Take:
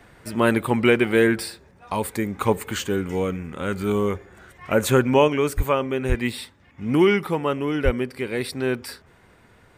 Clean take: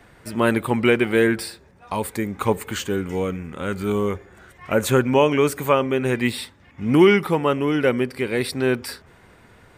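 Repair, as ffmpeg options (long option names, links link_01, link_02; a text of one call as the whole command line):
ffmpeg -i in.wav -filter_complex "[0:a]asplit=3[link_01][link_02][link_03];[link_01]afade=type=out:start_time=5.56:duration=0.02[link_04];[link_02]highpass=frequency=140:width=0.5412,highpass=frequency=140:width=1.3066,afade=type=in:start_time=5.56:duration=0.02,afade=type=out:start_time=5.68:duration=0.02[link_05];[link_03]afade=type=in:start_time=5.68:duration=0.02[link_06];[link_04][link_05][link_06]amix=inputs=3:normalize=0,asplit=3[link_07][link_08][link_09];[link_07]afade=type=out:start_time=6.08:duration=0.02[link_10];[link_08]highpass=frequency=140:width=0.5412,highpass=frequency=140:width=1.3066,afade=type=in:start_time=6.08:duration=0.02,afade=type=out:start_time=6.2:duration=0.02[link_11];[link_09]afade=type=in:start_time=6.2:duration=0.02[link_12];[link_10][link_11][link_12]amix=inputs=3:normalize=0,asplit=3[link_13][link_14][link_15];[link_13]afade=type=out:start_time=7.84:duration=0.02[link_16];[link_14]highpass=frequency=140:width=0.5412,highpass=frequency=140:width=1.3066,afade=type=in:start_time=7.84:duration=0.02,afade=type=out:start_time=7.96:duration=0.02[link_17];[link_15]afade=type=in:start_time=7.96:duration=0.02[link_18];[link_16][link_17][link_18]amix=inputs=3:normalize=0,asetnsamples=nb_out_samples=441:pad=0,asendcmd='5.28 volume volume 3.5dB',volume=0dB" out.wav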